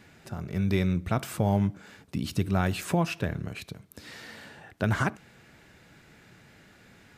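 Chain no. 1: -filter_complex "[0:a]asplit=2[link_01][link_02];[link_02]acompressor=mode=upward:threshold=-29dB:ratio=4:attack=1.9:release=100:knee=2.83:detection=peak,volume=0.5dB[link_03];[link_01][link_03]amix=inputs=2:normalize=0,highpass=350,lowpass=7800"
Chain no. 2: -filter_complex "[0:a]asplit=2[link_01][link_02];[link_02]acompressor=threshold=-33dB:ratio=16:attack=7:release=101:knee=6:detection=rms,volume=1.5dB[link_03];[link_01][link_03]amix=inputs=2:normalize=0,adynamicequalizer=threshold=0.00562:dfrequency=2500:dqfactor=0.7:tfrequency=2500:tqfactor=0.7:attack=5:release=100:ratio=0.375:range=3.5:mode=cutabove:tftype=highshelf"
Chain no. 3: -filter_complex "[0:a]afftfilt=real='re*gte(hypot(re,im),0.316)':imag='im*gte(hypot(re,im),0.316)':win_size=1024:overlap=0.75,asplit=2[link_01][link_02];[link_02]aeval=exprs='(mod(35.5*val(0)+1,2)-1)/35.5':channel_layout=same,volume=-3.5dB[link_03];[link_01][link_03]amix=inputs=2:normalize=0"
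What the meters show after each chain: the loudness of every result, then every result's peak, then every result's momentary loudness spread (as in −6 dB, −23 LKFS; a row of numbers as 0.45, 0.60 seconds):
−30.0, −27.5, −31.0 LKFS; −6.0, −9.5, −16.0 dBFS; 14, 15, 12 LU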